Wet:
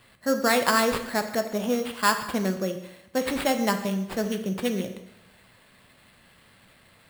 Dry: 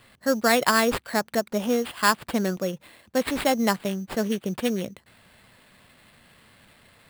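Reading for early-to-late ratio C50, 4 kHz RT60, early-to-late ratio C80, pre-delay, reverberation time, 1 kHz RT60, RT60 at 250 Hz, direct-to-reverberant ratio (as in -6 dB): 9.5 dB, 0.85 s, 11.5 dB, 4 ms, 0.90 s, 0.90 s, 0.85 s, 6.0 dB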